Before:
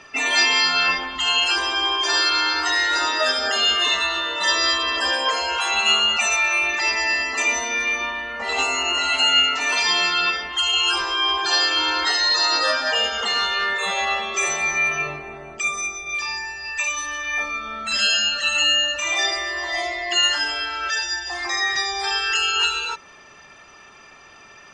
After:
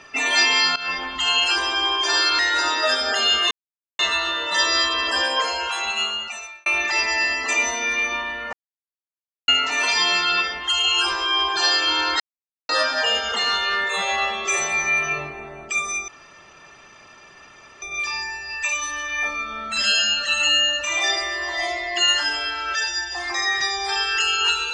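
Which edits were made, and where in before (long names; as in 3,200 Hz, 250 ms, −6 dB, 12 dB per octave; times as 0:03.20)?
0:00.76–0:01.06: fade in linear, from −18.5 dB
0:02.39–0:02.76: remove
0:03.88: splice in silence 0.48 s
0:05.23–0:06.55: fade out
0:08.42–0:09.37: silence
0:12.09–0:12.58: silence
0:15.97: splice in room tone 1.74 s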